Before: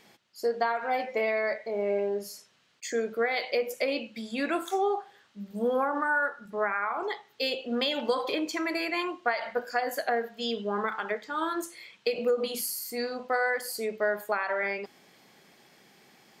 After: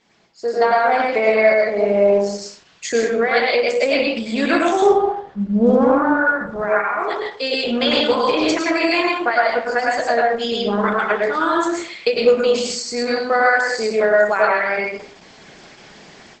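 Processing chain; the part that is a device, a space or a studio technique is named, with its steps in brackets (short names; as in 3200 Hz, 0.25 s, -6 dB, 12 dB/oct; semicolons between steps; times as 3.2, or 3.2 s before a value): 4.82–6.5 tilt -4.5 dB/oct; speakerphone in a meeting room (reverb RT60 0.45 s, pre-delay 98 ms, DRR -2 dB; AGC gain up to 15.5 dB; gain -2 dB; Opus 12 kbps 48000 Hz)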